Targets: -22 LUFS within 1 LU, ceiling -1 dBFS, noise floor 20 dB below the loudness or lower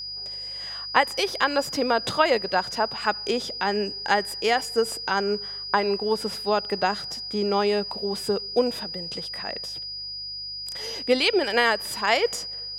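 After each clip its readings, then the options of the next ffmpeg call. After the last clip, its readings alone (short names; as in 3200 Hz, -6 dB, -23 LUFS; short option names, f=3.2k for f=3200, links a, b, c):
hum 50 Hz; harmonics up to 150 Hz; hum level -52 dBFS; steady tone 4900 Hz; tone level -32 dBFS; loudness -25.0 LUFS; peak -3.0 dBFS; loudness target -22.0 LUFS
-> -af "bandreject=f=50:t=h:w=4,bandreject=f=100:t=h:w=4,bandreject=f=150:t=h:w=4"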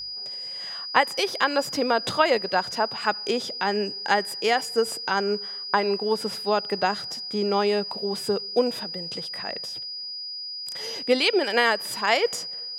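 hum none; steady tone 4900 Hz; tone level -32 dBFS
-> -af "bandreject=f=4.9k:w=30"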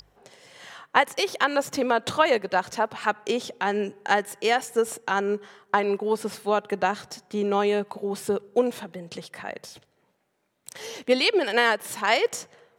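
steady tone none; loudness -25.0 LUFS; peak -3.0 dBFS; loudness target -22.0 LUFS
-> -af "volume=3dB,alimiter=limit=-1dB:level=0:latency=1"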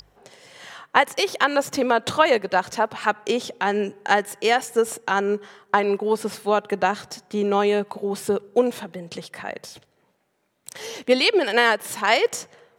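loudness -22.0 LUFS; peak -1.0 dBFS; noise floor -66 dBFS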